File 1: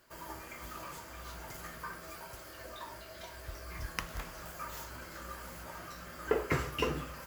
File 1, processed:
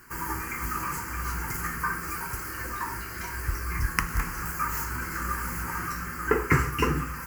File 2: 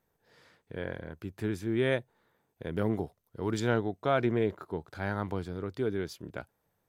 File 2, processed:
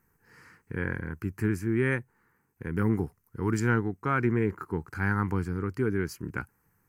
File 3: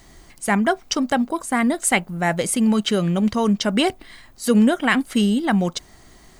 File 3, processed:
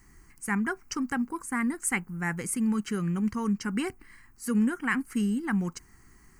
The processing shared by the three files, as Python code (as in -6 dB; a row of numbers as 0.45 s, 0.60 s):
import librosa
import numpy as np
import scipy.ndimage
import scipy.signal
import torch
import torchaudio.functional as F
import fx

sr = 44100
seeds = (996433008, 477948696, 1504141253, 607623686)

p1 = fx.rider(x, sr, range_db=5, speed_s=0.5)
p2 = x + F.gain(torch.from_numpy(p1), -2.5).numpy()
p3 = fx.fixed_phaser(p2, sr, hz=1500.0, stages=4)
y = p3 * 10.0 ** (-30 / 20.0) / np.sqrt(np.mean(np.square(p3)))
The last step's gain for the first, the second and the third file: +8.5 dB, +2.0 dB, -11.5 dB